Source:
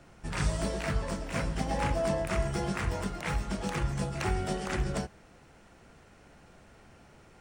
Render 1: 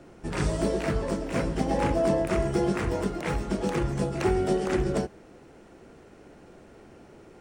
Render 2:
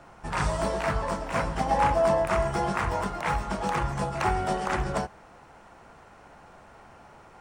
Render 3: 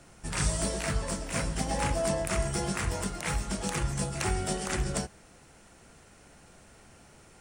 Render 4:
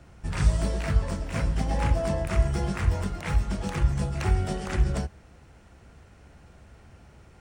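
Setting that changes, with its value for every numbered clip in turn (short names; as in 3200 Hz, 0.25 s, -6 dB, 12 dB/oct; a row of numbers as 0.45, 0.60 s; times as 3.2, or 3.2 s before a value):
bell, frequency: 360, 940, 9600, 70 Hz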